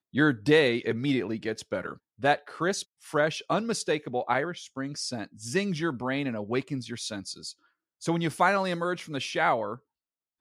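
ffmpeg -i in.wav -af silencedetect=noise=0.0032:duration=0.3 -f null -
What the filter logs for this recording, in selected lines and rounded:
silence_start: 7.53
silence_end: 8.01 | silence_duration: 0.48
silence_start: 9.78
silence_end: 10.41 | silence_duration: 0.63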